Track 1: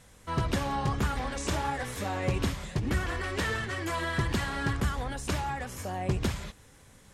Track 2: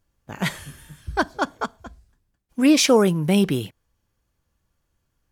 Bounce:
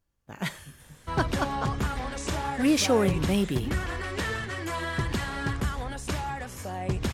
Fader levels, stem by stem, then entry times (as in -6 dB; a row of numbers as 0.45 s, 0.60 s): 0.0 dB, -7.0 dB; 0.80 s, 0.00 s